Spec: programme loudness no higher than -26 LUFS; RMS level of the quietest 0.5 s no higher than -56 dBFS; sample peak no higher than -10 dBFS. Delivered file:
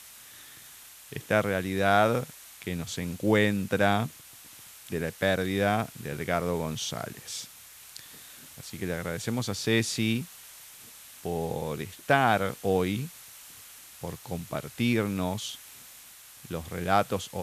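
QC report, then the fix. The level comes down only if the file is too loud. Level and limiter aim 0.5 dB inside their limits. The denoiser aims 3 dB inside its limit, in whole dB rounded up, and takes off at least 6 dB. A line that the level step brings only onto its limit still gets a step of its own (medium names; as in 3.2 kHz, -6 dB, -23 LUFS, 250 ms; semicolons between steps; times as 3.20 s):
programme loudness -28.5 LUFS: pass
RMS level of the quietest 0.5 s -50 dBFS: fail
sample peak -7.0 dBFS: fail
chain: noise reduction 9 dB, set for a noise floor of -50 dBFS; peak limiter -10.5 dBFS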